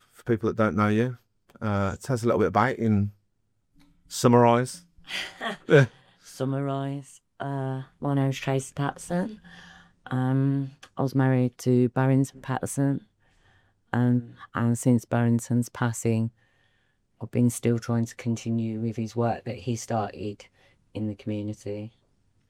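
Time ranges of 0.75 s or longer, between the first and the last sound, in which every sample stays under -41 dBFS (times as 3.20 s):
3.10–4.11 s
12.98–13.93 s
16.29–17.21 s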